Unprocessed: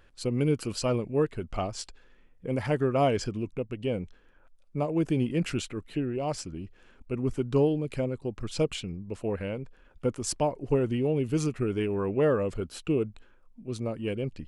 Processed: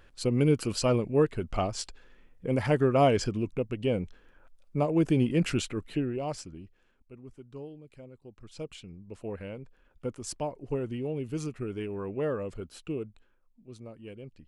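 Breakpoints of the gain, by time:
5.87 s +2 dB
6.6 s -7 dB
7.24 s -19 dB
7.99 s -19 dB
9.23 s -6.5 dB
12.74 s -6.5 dB
13.85 s -13 dB

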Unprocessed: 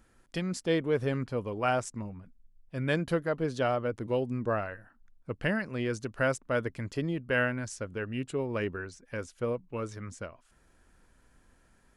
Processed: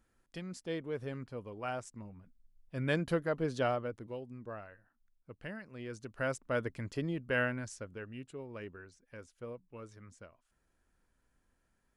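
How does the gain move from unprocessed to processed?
1.9 s -10.5 dB
2.81 s -3 dB
3.68 s -3 dB
4.21 s -14.5 dB
5.66 s -14.5 dB
6.48 s -4 dB
7.53 s -4 dB
8.32 s -13 dB

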